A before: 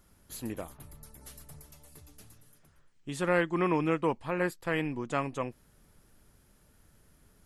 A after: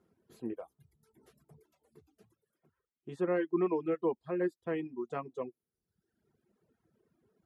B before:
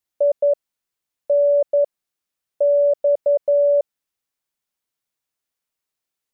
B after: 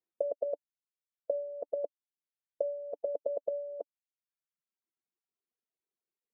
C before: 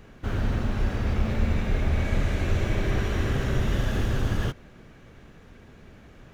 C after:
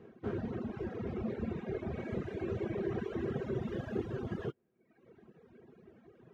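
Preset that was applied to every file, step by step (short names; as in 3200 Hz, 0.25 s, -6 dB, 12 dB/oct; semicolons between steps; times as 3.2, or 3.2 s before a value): reverb removal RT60 1.3 s; LPF 1400 Hz 6 dB/oct; reverb removal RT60 0.71 s; HPF 130 Hz 12 dB/oct; bell 350 Hz +11 dB 1.2 oct; notch comb 290 Hz; gain -6 dB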